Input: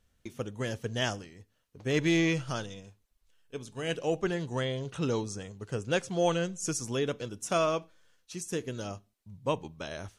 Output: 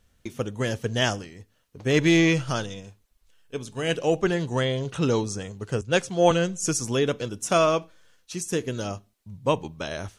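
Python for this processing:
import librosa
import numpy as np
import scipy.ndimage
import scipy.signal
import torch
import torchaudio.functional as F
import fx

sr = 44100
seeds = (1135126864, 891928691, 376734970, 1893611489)

y = fx.band_widen(x, sr, depth_pct=70, at=(5.81, 6.31))
y = y * 10.0 ** (7.0 / 20.0)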